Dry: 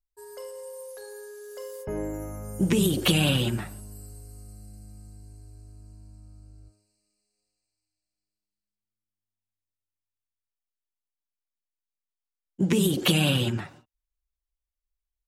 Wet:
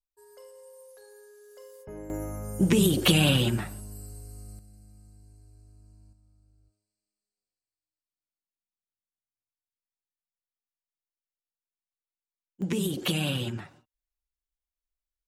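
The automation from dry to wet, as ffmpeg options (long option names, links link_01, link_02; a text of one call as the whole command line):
ffmpeg -i in.wav -af "asetnsamples=nb_out_samples=441:pad=0,asendcmd='2.1 volume volume 1dB;4.59 volume volume -7dB;6.13 volume volume -14dB;12.62 volume volume -6dB',volume=-10dB" out.wav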